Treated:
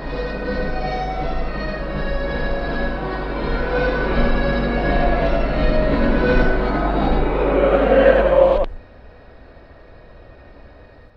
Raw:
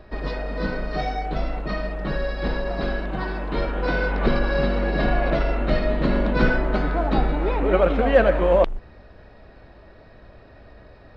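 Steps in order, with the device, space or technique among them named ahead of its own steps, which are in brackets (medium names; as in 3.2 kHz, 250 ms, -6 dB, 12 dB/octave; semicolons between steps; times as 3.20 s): reverse reverb (reverse; reverberation RT60 1.3 s, pre-delay 66 ms, DRR -6.5 dB; reverse); trim -3.5 dB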